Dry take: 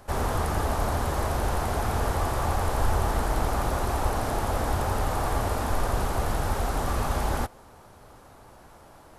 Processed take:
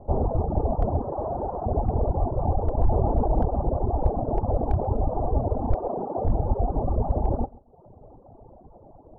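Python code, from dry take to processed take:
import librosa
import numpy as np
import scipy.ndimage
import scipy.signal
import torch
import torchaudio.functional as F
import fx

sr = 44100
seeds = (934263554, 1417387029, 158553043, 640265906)

p1 = fx.highpass(x, sr, hz=250.0, slope=12, at=(5.74, 6.25))
p2 = fx.dereverb_blind(p1, sr, rt60_s=0.62)
p3 = scipy.signal.sosfilt(scipy.signal.butter(6, 790.0, 'lowpass', fs=sr, output='sos'), p2)
p4 = fx.dereverb_blind(p3, sr, rt60_s=0.82)
p5 = fx.tilt_eq(p4, sr, slope=3.5, at=(1.02, 1.66))
p6 = fx.rider(p5, sr, range_db=10, speed_s=0.5)
p7 = p5 + (p6 * librosa.db_to_amplitude(0.0))
p8 = np.clip(p7, -10.0 ** (-13.0 / 20.0), 10.0 ** (-13.0 / 20.0))
p9 = p8 + fx.echo_feedback(p8, sr, ms=135, feedback_pct=27, wet_db=-21.5, dry=0)
p10 = fx.env_flatten(p9, sr, amount_pct=50, at=(2.89, 3.42))
y = p10 * librosa.db_to_amplitude(1.0)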